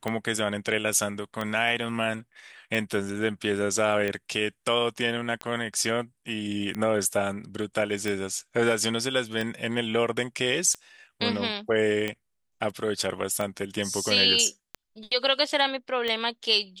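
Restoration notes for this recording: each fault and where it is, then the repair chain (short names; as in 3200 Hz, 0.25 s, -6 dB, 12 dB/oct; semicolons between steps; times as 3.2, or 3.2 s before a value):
tick 45 rpm -16 dBFS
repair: de-click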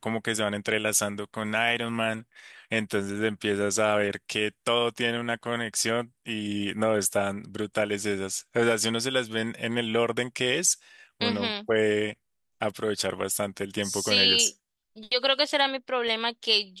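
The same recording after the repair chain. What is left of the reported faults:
none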